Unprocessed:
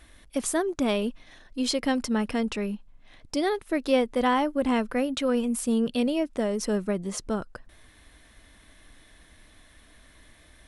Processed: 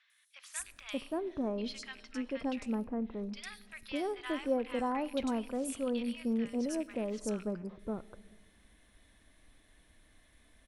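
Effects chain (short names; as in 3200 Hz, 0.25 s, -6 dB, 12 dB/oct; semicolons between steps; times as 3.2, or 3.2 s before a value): rattling part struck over -38 dBFS, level -29 dBFS; 1.62–2.4 air absorption 76 m; three bands offset in time mids, highs, lows 0.1/0.58 s, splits 1300/4800 Hz; on a send at -17 dB: reverb RT60 1.4 s, pre-delay 4 ms; on the sum: gain -9 dB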